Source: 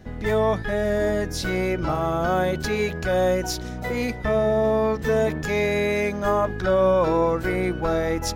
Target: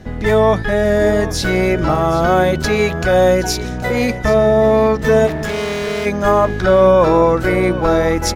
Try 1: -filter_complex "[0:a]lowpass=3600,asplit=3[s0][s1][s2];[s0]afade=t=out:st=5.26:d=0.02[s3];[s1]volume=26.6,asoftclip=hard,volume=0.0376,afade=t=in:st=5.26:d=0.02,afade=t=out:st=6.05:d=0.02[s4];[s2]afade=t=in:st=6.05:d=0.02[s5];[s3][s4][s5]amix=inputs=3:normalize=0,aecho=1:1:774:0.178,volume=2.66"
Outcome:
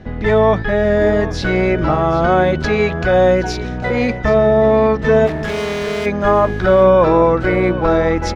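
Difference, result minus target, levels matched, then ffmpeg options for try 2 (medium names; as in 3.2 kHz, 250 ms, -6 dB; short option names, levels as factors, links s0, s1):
8 kHz band -10.0 dB
-filter_complex "[0:a]lowpass=14000,asplit=3[s0][s1][s2];[s0]afade=t=out:st=5.26:d=0.02[s3];[s1]volume=26.6,asoftclip=hard,volume=0.0376,afade=t=in:st=5.26:d=0.02,afade=t=out:st=6.05:d=0.02[s4];[s2]afade=t=in:st=6.05:d=0.02[s5];[s3][s4][s5]amix=inputs=3:normalize=0,aecho=1:1:774:0.178,volume=2.66"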